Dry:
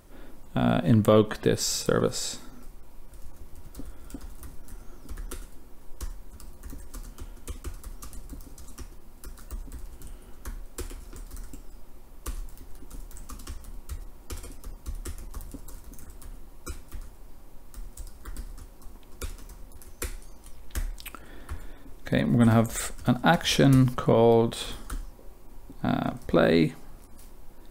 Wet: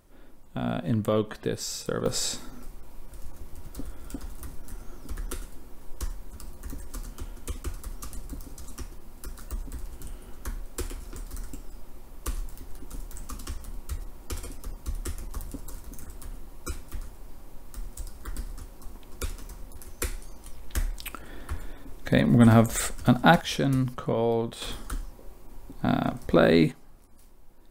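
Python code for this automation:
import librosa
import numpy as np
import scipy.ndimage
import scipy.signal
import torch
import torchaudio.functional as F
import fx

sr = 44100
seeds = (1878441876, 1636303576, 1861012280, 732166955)

y = fx.gain(x, sr, db=fx.steps((0.0, -6.0), (2.06, 3.0), (23.41, -6.0), (24.62, 1.5), (26.72, -7.0)))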